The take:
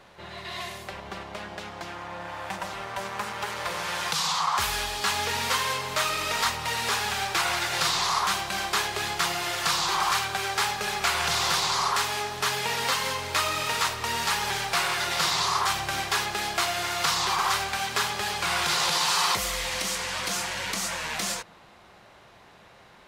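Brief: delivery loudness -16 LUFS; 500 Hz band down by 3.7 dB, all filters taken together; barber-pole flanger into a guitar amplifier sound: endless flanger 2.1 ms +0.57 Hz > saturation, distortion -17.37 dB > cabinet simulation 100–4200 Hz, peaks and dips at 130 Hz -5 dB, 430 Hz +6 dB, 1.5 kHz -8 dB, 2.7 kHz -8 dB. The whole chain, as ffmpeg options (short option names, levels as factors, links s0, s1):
-filter_complex "[0:a]equalizer=f=500:t=o:g=-8.5,asplit=2[s0][s1];[s1]adelay=2.1,afreqshift=0.57[s2];[s0][s2]amix=inputs=2:normalize=1,asoftclip=threshold=0.0708,highpass=100,equalizer=f=130:t=q:w=4:g=-5,equalizer=f=430:t=q:w=4:g=6,equalizer=f=1500:t=q:w=4:g=-8,equalizer=f=2700:t=q:w=4:g=-8,lowpass=f=4200:w=0.5412,lowpass=f=4200:w=1.3066,volume=8.91"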